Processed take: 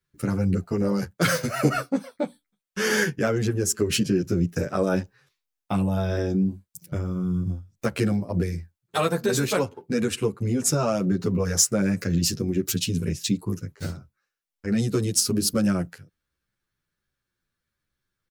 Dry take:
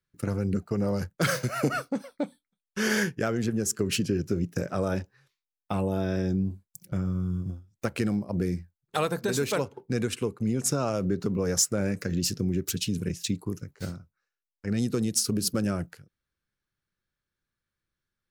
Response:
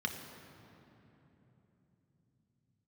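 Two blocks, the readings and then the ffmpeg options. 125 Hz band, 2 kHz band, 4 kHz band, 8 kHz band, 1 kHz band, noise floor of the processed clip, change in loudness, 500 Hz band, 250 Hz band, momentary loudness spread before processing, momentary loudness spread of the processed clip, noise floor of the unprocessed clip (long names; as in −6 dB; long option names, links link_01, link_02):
+4.0 dB, +3.5 dB, +4.0 dB, +4.0 dB, +3.5 dB, −84 dBFS, +4.0 dB, +4.0 dB, +4.0 dB, 10 LU, 10 LU, below −85 dBFS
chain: -filter_complex "[0:a]asplit=2[link_01][link_02];[link_02]adelay=10,afreqshift=-1.3[link_03];[link_01][link_03]amix=inputs=2:normalize=1,volume=7dB"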